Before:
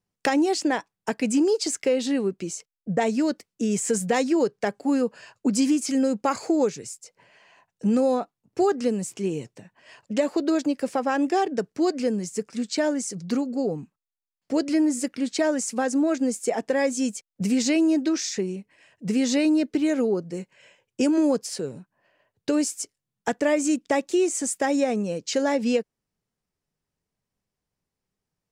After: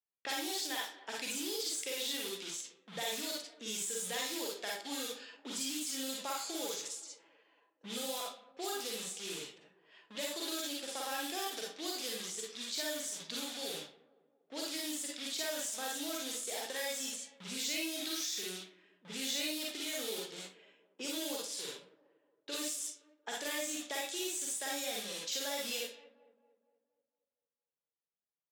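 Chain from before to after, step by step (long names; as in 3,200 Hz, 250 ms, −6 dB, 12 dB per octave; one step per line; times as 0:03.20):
in parallel at −5 dB: bit reduction 5 bits
on the sum: first difference
de-essing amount 60%
high-pass filter 45 Hz
on a send: tape delay 232 ms, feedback 53%, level −21 dB, low-pass 4,200 Hz
on the sum: four-comb reverb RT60 0.36 s, DRR −3 dB
downward compressor 2 to 1, threshold −37 dBFS, peak gain reduction 5 dB
parametric band 3,500 Hz +11.5 dB 0.4 octaves
low-pass that shuts in the quiet parts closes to 890 Hz, open at −34 dBFS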